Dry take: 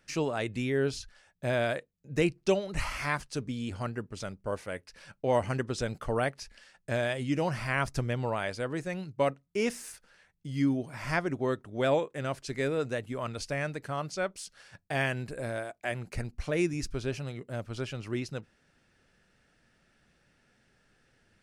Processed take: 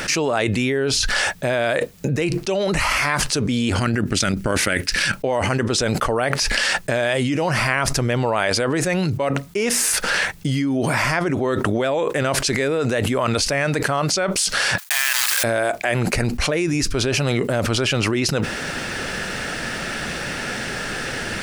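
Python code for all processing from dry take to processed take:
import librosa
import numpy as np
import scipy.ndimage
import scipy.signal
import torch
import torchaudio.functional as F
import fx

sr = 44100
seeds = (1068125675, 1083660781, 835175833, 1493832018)

y = fx.chain(x, sr, fx.band_shelf(hz=700.0, db=-9.5, octaves=1.7),
    fx.over_compress(threshold_db=-43.0, ratio=-1.0),
    fx.transient(attack_db=10, sustain_db=-3), at=(3.78, 5.15))
y = fx.chain(y, sr, fx.block_float(bits=3),
    fx.highpass(hz=1100.0, slope=24),
    fx.high_shelf(hz=3900.0, db=8.0), at=(14.78, 15.44))
y = fx.low_shelf(y, sr, hz=190.0, db=-9.0)
y = fx.env_flatten(y, sr, amount_pct=100)
y = F.gain(torch.from_numpy(y), 2.5).numpy()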